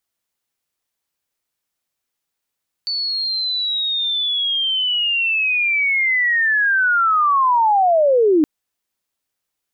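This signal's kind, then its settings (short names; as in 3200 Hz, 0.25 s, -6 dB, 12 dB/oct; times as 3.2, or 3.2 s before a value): chirp linear 4500 Hz -> 290 Hz -19.5 dBFS -> -10.5 dBFS 5.57 s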